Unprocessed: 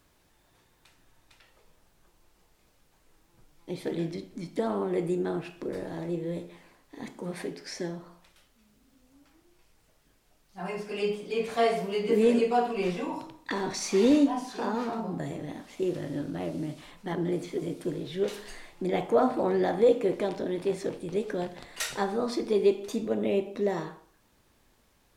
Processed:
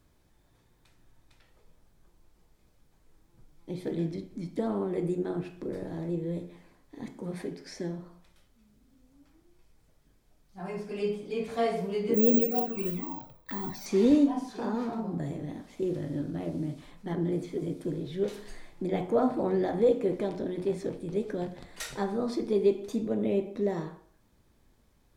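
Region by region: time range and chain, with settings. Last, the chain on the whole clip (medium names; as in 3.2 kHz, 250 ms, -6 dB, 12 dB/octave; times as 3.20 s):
12.14–13.86 s: peaking EQ 9.1 kHz -11 dB 0.93 oct + touch-sensitive flanger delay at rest 2.1 ms, full sweep at -19.5 dBFS + careless resampling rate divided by 2×, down filtered, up zero stuff
whole clip: bass shelf 380 Hz +10 dB; band-stop 2.8 kHz, Q 16; de-hum 90.7 Hz, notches 28; trim -6 dB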